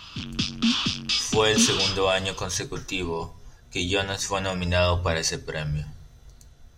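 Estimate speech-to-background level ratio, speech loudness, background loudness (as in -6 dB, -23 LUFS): -1.0 dB, -25.5 LUFS, -24.5 LUFS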